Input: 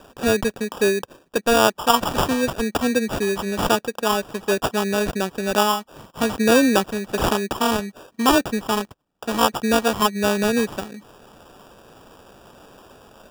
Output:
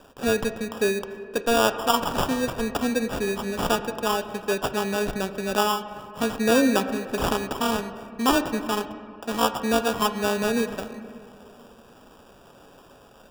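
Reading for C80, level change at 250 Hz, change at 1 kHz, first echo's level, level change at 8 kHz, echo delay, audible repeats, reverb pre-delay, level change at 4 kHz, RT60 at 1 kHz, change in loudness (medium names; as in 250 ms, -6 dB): 11.5 dB, -4.0 dB, -4.0 dB, no echo, -4.5 dB, no echo, no echo, 4 ms, -4.0 dB, 2.2 s, -4.0 dB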